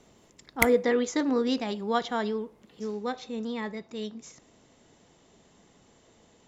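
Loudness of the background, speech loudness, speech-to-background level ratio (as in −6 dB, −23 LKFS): −29.0 LKFS, −29.5 LKFS, −0.5 dB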